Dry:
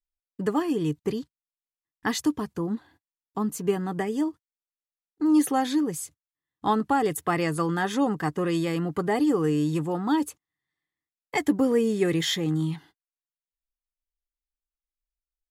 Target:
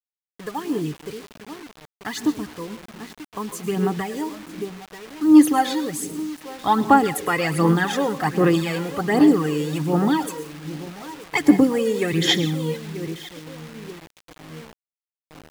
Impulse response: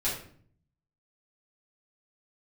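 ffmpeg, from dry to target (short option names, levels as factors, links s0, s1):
-filter_complex "[0:a]asplit=2[s0][s1];[s1]adelay=938,lowpass=f=2600:p=1,volume=0.188,asplit=2[s2][s3];[s3]adelay=938,lowpass=f=2600:p=1,volume=0.41,asplit=2[s4][s5];[s5]adelay=938,lowpass=f=2600:p=1,volume=0.41,asplit=2[s6][s7];[s7]adelay=938,lowpass=f=2600:p=1,volume=0.41[s8];[s0][s2][s4][s6][s8]amix=inputs=5:normalize=0,asplit=2[s9][s10];[1:a]atrim=start_sample=2205,adelay=102[s11];[s10][s11]afir=irnorm=-1:irlink=0,volume=0.112[s12];[s9][s12]amix=inputs=2:normalize=0,dynaudnorm=f=410:g=17:m=2.82,aphaser=in_gain=1:out_gain=1:delay=2.1:decay=0.59:speed=1.3:type=sinusoidal,highpass=f=52:w=0.5412,highpass=f=52:w=1.3066,acrusher=bits=5:mix=0:aa=0.000001,equalizer=f=2500:w=0.52:g=3.5,volume=0.473"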